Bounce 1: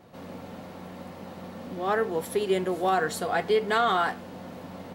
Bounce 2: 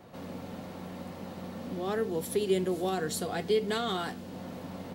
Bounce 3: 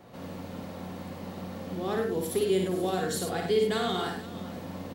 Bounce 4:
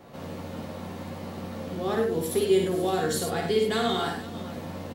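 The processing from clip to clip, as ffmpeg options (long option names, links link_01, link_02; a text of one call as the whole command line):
ffmpeg -i in.wav -filter_complex "[0:a]acrossover=split=420|3000[link_01][link_02][link_03];[link_02]acompressor=threshold=-49dB:ratio=2[link_04];[link_01][link_04][link_03]amix=inputs=3:normalize=0,volume=1dB" out.wav
ffmpeg -i in.wav -af "aecho=1:1:55|101|481:0.596|0.447|0.15" out.wav
ffmpeg -i in.wav -filter_complex "[0:a]asplit=2[link_01][link_02];[link_02]adelay=13,volume=-6dB[link_03];[link_01][link_03]amix=inputs=2:normalize=0,volume=2dB" out.wav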